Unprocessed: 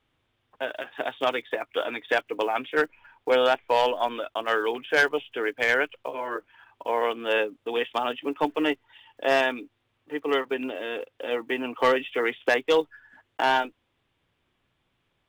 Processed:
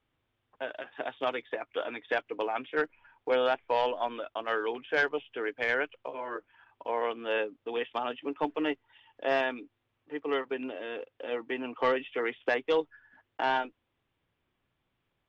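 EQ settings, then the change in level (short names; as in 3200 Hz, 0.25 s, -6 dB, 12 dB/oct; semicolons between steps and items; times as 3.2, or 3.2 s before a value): air absorption 160 m; -5.0 dB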